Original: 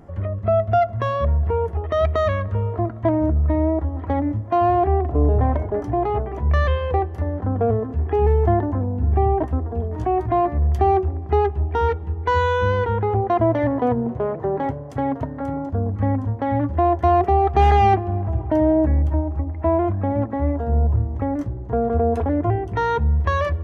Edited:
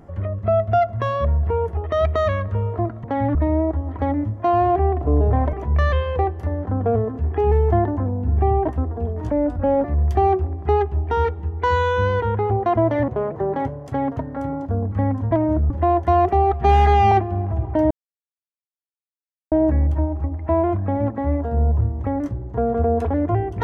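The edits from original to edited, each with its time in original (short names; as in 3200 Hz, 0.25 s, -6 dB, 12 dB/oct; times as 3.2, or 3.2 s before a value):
3.04–3.43 swap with 16.35–16.66
5.61–6.28 cut
10.06–10.48 speed 79%
13.72–14.12 cut
17.49–17.88 stretch 1.5×
18.67 insert silence 1.61 s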